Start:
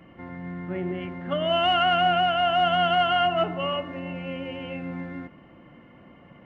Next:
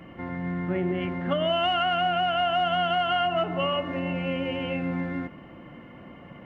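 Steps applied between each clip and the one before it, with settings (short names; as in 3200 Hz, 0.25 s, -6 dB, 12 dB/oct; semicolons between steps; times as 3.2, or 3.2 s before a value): compressor 6:1, threshold -27 dBFS, peak gain reduction 9.5 dB; gain +5 dB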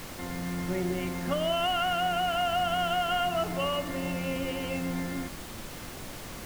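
added noise pink -38 dBFS; gain -3.5 dB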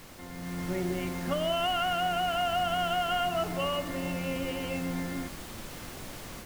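AGC gain up to 7 dB; gain -8 dB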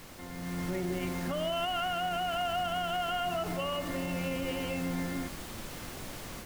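limiter -24.5 dBFS, peak gain reduction 7.5 dB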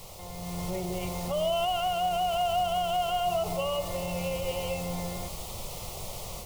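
fixed phaser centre 670 Hz, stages 4; gain +6 dB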